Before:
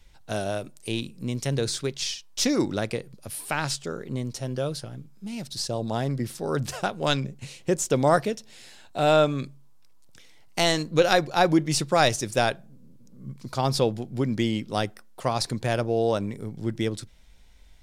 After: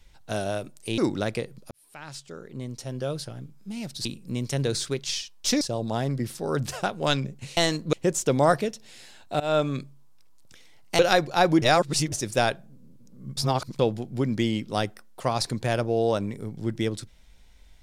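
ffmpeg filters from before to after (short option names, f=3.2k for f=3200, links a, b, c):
-filter_complex "[0:a]asplit=13[a][b][c][d][e][f][g][h][i][j][k][l][m];[a]atrim=end=0.982[n];[b]atrim=start=2.538:end=3.27,asetpts=PTS-STARTPTS,afade=t=out:st=0.728:d=0.004:c=hsin[o];[c]atrim=start=3.27:end=5.612,asetpts=PTS-STARTPTS,afade=t=in:d=1.64[p];[d]atrim=start=0.978:end=2.542[q];[e]atrim=start=5.608:end=7.572[r];[f]atrim=start=10.628:end=10.992[s];[g]atrim=start=7.568:end=9.04,asetpts=PTS-STARTPTS,afade=t=out:st=1.468:d=0.004:c=hsin:silence=0.0794328[t];[h]atrim=start=9.04:end=10.632,asetpts=PTS-STARTPTS,afade=t=in:d=0.35:c=qsin:silence=0.0794328[u];[i]atrim=start=10.988:end=11.622[v];[j]atrim=start=11.618:end=12.122,asetpts=PTS-STARTPTS,areverse[w];[k]atrim=start=12.118:end=13.372[x];[l]atrim=start=13.368:end=13.792,asetpts=PTS-STARTPTS,areverse[y];[m]atrim=start=13.788[z];[o][p]concat=n=2:v=0:a=1[aa];[n][aa]acrossfade=d=0.004:c1=hsin:c2=hsin[ab];[ab][q]acrossfade=d=0.004:c1=hsin:c2=hsin[ac];[ac][r]acrossfade=d=0.004:c1=hsin:c2=hsin[ad];[ad][s]acrossfade=d=0.004:c1=hsin:c2=hsin[ae];[t][u]concat=n=2:v=0:a=1[af];[ae][af]acrossfade=d=0.004:c1=hsin:c2=hsin[ag];[ag][v]acrossfade=d=0.004:c1=hsin:c2=hsin[ah];[ah][w]acrossfade=d=0.004:c1=hsin:c2=hsin[ai];[ai][x]acrossfade=d=0.004:c1=hsin:c2=hsin[aj];[aj][y]acrossfade=d=0.004:c1=hsin:c2=hsin[ak];[ak][z]acrossfade=d=0.004:c1=hsin:c2=hsin"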